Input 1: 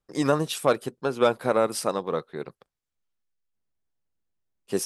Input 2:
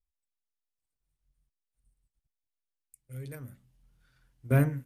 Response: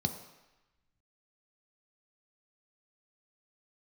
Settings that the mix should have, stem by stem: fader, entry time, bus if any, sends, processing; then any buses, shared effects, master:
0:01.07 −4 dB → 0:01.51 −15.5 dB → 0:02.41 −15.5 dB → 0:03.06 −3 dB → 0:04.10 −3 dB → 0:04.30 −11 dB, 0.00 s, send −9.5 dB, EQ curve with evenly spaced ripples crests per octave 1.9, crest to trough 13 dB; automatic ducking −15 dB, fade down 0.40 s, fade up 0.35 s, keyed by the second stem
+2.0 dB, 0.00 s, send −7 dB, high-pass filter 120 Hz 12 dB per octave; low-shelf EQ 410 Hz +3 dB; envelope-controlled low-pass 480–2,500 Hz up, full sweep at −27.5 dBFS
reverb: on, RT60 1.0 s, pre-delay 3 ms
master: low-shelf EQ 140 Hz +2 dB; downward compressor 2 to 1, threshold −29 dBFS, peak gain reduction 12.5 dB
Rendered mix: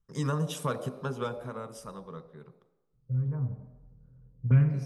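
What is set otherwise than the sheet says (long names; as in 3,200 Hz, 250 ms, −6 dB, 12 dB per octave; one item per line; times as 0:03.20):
stem 1: missing EQ curve with evenly spaced ripples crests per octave 1.9, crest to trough 13 dB
stem 2: missing high-pass filter 120 Hz 12 dB per octave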